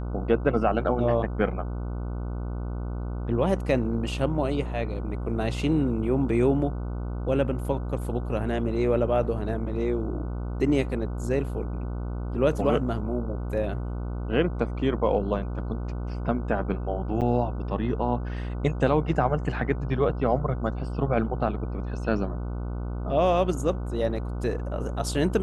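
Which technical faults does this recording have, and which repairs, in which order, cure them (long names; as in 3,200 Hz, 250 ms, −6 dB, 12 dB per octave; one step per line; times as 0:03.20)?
mains buzz 60 Hz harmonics 25 −31 dBFS
0:17.21–0:17.22: drop-out 7.1 ms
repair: hum removal 60 Hz, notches 25
repair the gap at 0:17.21, 7.1 ms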